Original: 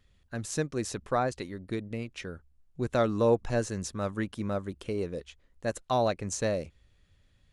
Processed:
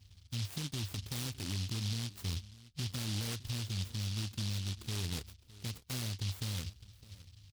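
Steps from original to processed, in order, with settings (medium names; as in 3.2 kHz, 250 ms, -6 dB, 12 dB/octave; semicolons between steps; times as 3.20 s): high-pass 41 Hz; peaking EQ 81 Hz +4.5 dB 2.1 oct; harmonic-percussive split percussive -6 dB; fifteen-band graphic EQ 100 Hz +12 dB, 250 Hz +5 dB, 630 Hz -4 dB, 2.5 kHz -4 dB, 6.3 kHz -7 dB; compression 6:1, threshold -30 dBFS, peak gain reduction 14 dB; peak limiter -30 dBFS, peak gain reduction 8 dB; on a send: delay 610 ms -19 dB; on the sum: delay time shaken by noise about 3.9 kHz, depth 0.48 ms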